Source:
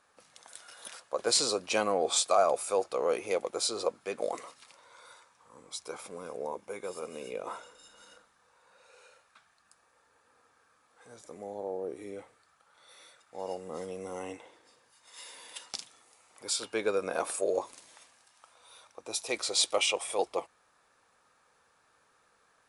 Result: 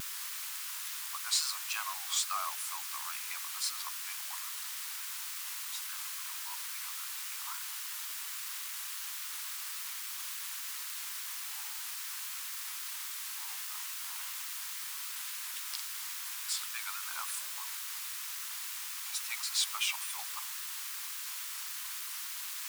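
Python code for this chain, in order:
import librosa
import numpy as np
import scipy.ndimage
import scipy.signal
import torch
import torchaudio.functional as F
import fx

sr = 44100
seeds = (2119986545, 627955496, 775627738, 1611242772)

y = fx.quant_dither(x, sr, seeds[0], bits=6, dither='triangular')
y = scipy.signal.sosfilt(scipy.signal.butter(8, 970.0, 'highpass', fs=sr, output='sos'), y)
y = fx.vibrato(y, sr, rate_hz=3.6, depth_cents=84.0)
y = y * 10.0 ** (-4.0 / 20.0)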